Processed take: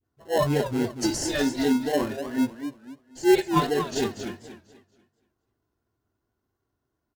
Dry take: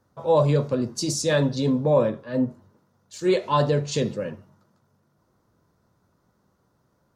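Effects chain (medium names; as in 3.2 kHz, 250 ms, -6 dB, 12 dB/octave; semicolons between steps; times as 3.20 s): spectral noise reduction 12 dB; comb 2.8 ms, depth 86%; phase dispersion highs, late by 42 ms, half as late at 600 Hz; in parallel at -4 dB: sample-and-hold 37×; on the sum: modulated delay 242 ms, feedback 32%, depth 204 cents, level -9 dB; trim -5 dB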